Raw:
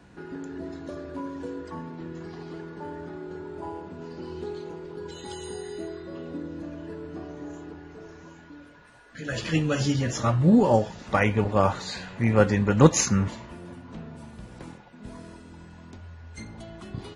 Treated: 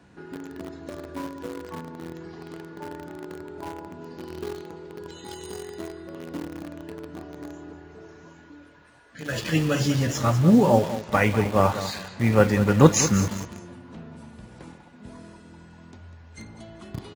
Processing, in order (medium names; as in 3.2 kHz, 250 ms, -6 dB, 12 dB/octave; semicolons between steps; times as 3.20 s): feedback delay 197 ms, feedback 34%, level -12.5 dB; in parallel at -7.5 dB: bit crusher 5-bit; on the sum: high-pass 55 Hz; trim -1.5 dB